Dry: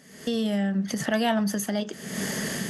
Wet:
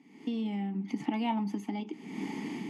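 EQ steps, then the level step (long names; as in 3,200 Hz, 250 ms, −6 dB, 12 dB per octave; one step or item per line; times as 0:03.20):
formant filter u
+7.5 dB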